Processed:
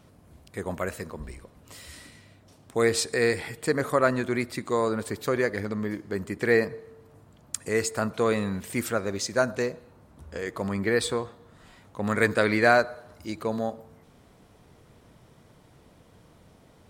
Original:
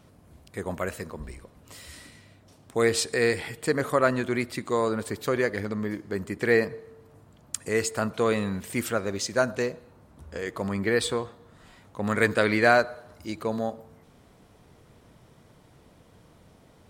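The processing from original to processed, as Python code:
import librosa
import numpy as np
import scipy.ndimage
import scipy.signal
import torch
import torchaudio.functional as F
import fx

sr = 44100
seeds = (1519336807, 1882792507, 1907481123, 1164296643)

y = fx.dynamic_eq(x, sr, hz=3000.0, q=4.4, threshold_db=-51.0, ratio=4.0, max_db=-5)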